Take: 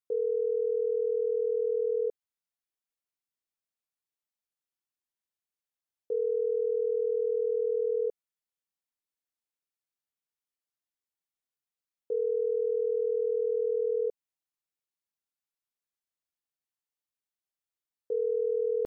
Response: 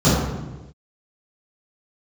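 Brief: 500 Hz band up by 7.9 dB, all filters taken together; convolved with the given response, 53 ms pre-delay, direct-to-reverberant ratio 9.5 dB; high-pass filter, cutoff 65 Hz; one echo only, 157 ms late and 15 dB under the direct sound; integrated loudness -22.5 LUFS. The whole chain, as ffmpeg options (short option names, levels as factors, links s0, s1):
-filter_complex "[0:a]highpass=65,equalizer=f=500:t=o:g=8.5,aecho=1:1:157:0.178,asplit=2[s0][s1];[1:a]atrim=start_sample=2205,adelay=53[s2];[s1][s2]afir=irnorm=-1:irlink=0,volume=0.0237[s3];[s0][s3]amix=inputs=2:normalize=0"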